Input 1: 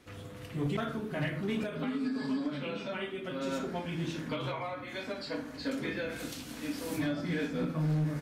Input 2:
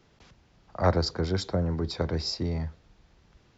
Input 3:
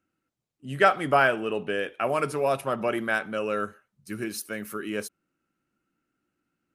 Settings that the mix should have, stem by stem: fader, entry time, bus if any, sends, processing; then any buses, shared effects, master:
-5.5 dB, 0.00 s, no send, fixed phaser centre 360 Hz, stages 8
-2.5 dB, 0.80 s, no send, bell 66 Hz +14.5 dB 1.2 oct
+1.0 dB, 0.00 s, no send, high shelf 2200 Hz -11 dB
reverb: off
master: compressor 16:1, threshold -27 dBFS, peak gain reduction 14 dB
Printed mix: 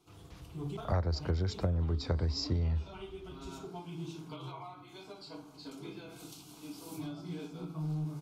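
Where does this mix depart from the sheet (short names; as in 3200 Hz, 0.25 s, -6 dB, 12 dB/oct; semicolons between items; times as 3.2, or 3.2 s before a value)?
stem 2: entry 0.80 s -> 0.10 s; stem 3: muted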